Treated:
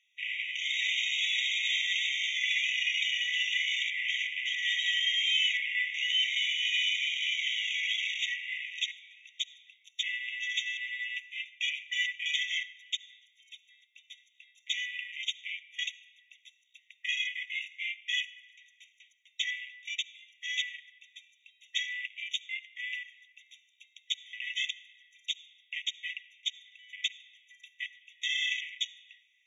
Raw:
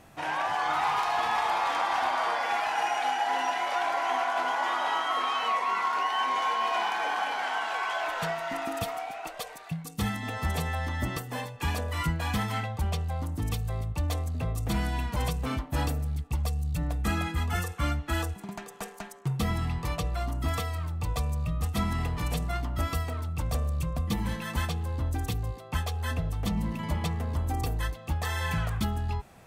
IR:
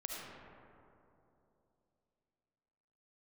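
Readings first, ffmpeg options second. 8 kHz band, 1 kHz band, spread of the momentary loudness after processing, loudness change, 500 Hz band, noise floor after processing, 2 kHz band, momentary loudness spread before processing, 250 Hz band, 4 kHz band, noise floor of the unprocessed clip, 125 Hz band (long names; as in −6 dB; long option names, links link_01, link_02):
−1.5 dB, below −40 dB, 12 LU, −1.0 dB, below −40 dB, −69 dBFS, +3.0 dB, 6 LU, below −40 dB, +9.0 dB, −46 dBFS, below −40 dB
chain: -filter_complex "[0:a]lowpass=frequency=4200:width_type=q:width=2.5,afwtdn=0.0141,bandreject=frequency=50:width_type=h:width=6,bandreject=frequency=100:width_type=h:width=6,bandreject=frequency=150:width_type=h:width=6,bandreject=frequency=200:width_type=h:width=6,bandreject=frequency=250:width_type=h:width=6,bandreject=frequency=300:width_type=h:width=6,asplit=2[link_01][link_02];[1:a]atrim=start_sample=2205,lowshelf=frequency=87:gain=-4.5[link_03];[link_02][link_03]afir=irnorm=-1:irlink=0,volume=-12.5dB[link_04];[link_01][link_04]amix=inputs=2:normalize=0,afftfilt=real='re*eq(mod(floor(b*sr/1024/1900),2),1)':imag='im*eq(mod(floor(b*sr/1024/1900),2),1)':win_size=1024:overlap=0.75,volume=4.5dB"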